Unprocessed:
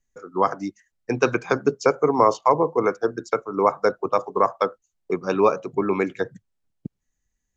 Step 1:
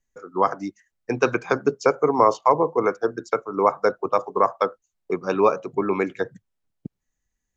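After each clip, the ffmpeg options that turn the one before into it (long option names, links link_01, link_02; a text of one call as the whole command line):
ffmpeg -i in.wav -af "equalizer=frequency=950:width=0.34:gain=3,volume=-2.5dB" out.wav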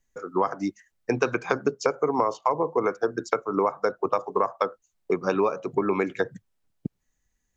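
ffmpeg -i in.wav -af "acompressor=threshold=-24dB:ratio=6,volume=4dB" out.wav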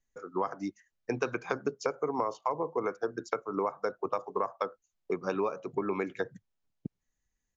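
ffmpeg -i in.wav -af "aresample=16000,aresample=44100,volume=-7.5dB" out.wav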